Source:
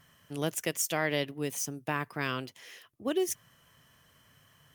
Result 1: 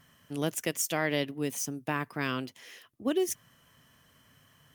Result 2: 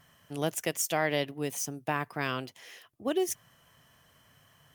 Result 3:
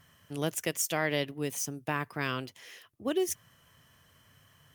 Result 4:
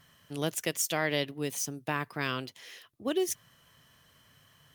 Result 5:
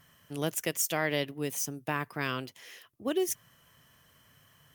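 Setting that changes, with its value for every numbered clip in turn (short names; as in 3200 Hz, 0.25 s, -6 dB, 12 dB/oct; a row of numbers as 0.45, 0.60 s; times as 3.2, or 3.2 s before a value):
bell, frequency: 250, 740, 88, 4000, 16000 Hz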